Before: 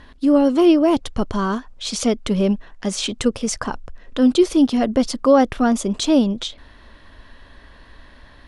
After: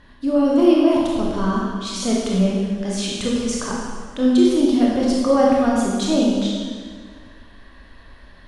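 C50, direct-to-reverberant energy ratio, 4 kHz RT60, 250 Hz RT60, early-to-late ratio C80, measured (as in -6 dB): -1.0 dB, -4.5 dB, 1.6 s, 1.9 s, 1.0 dB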